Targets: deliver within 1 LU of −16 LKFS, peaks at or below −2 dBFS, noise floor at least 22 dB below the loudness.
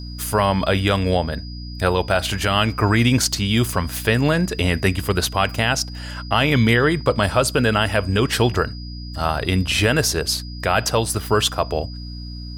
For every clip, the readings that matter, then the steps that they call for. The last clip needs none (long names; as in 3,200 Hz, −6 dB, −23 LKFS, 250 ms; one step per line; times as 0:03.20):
mains hum 60 Hz; hum harmonics up to 300 Hz; level of the hum −30 dBFS; interfering tone 4,900 Hz; level of the tone −39 dBFS; integrated loudness −19.5 LKFS; sample peak −5.0 dBFS; target loudness −16.0 LKFS
→ hum removal 60 Hz, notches 5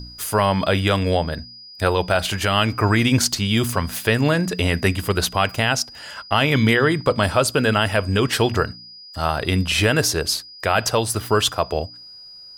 mains hum none found; interfering tone 4,900 Hz; level of the tone −39 dBFS
→ notch filter 4,900 Hz, Q 30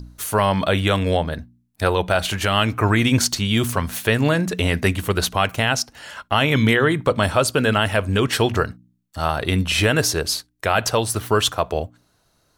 interfering tone none found; integrated loudness −20.0 LKFS; sample peak −5.0 dBFS; target loudness −16.0 LKFS
→ level +4 dB
brickwall limiter −2 dBFS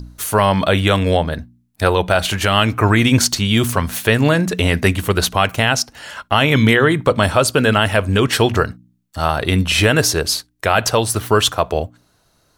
integrated loudness −16.0 LKFS; sample peak −2.0 dBFS; background noise floor −60 dBFS